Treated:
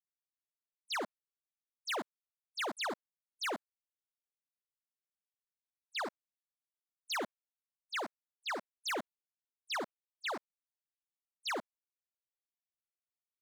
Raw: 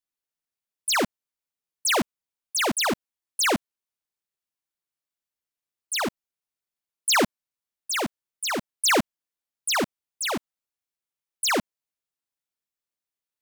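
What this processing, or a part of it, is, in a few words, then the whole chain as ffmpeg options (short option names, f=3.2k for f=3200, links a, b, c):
walkie-talkie: -af "highpass=530,lowpass=2.5k,asoftclip=type=hard:threshold=-30dB,agate=range=-21dB:threshold=-43dB:ratio=16:detection=peak,volume=-4dB"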